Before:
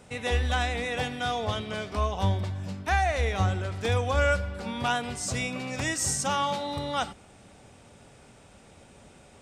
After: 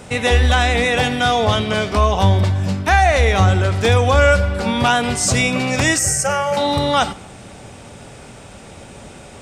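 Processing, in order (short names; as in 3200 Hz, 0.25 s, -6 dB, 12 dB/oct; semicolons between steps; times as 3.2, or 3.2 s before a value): in parallel at +3 dB: limiter -22 dBFS, peak gain reduction 9.5 dB; 5.99–6.57 on the sum: fixed phaser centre 990 Hz, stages 6; reverb RT60 1.1 s, pre-delay 4 ms, DRR 19 dB; gain +7 dB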